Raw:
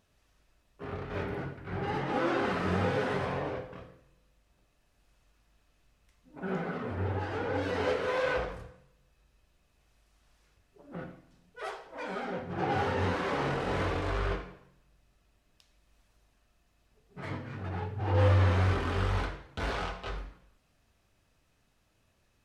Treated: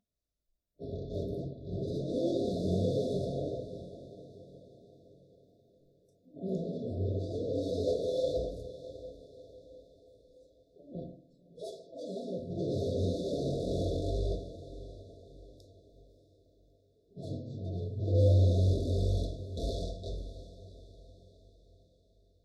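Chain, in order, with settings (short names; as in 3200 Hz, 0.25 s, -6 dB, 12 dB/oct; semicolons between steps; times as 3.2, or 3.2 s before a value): FFT band-reject 710–3400 Hz; spectral noise reduction 20 dB; diffused feedback echo 0.632 s, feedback 45%, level -14.5 dB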